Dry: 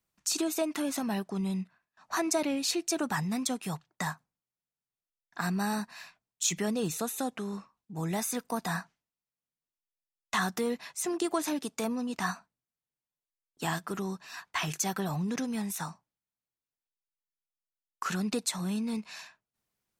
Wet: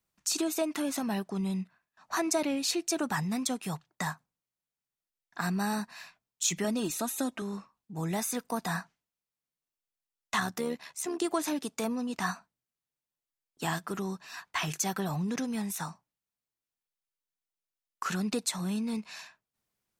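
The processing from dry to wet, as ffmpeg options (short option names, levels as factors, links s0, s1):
-filter_complex "[0:a]asettb=1/sr,asplit=3[s0][s1][s2];[s0]atrim=end=6.644[s3];[s1]atrim=start=6.64:end=7.42,asetpts=PTS-STARTPTS,afade=t=in:d=0.004:c=qsin,afade=t=out:st=0.776:d=0.004:c=qsin,aecho=1:1:3.2:0.58,atrim=end_sample=34398[s4];[s2]atrim=start=7.416[s5];[s3][s4]acrossfade=d=0.004:c1=hsin:c2=qsin[s6];[s6][s5]acrossfade=d=0.004:c1=qsin:c2=hsin,asettb=1/sr,asplit=3[s7][s8][s9];[s7]atrim=end=10.404[s10];[s8]atrim=start=10.4:end=11.18,asetpts=PTS-STARTPTS,afade=t=in:d=0.004:c=qsin,afade=t=out:st=0.776:d=0.004:c=qsin,tremolo=f=73:d=0.519[s11];[s9]atrim=start=11.176[s12];[s10][s11]acrossfade=d=0.004:c1=hsin:c2=qsin[s13];[s13][s12]acrossfade=d=0.004:c1=qsin:c2=hsin"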